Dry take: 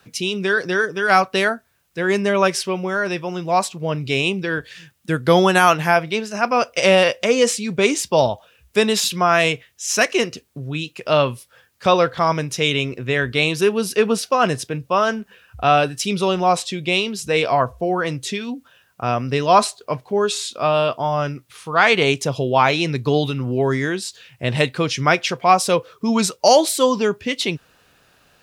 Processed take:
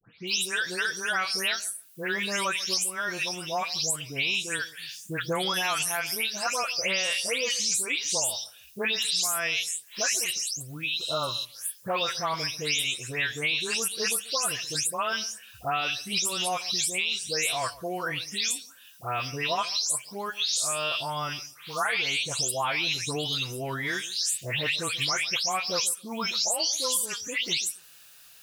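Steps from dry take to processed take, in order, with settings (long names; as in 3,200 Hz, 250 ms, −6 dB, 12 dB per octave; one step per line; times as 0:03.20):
every frequency bin delayed by itself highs late, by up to 275 ms
first-order pre-emphasis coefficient 0.97
healed spectral selection 0:11.04–0:11.42, 1,500–7,500 Hz before
low-shelf EQ 150 Hz +11 dB
in parallel at −1.5 dB: brickwall limiter −21 dBFS, peak gain reduction 10.5 dB
on the sum: downward compressor 6 to 1, threshold −29 dBFS, peak gain reduction 12 dB
on a send: feedback echo with a low-pass in the loop 140 ms, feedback 18%, low-pass 1,100 Hz, level −17.5 dB
on the sum: level +4.5 dB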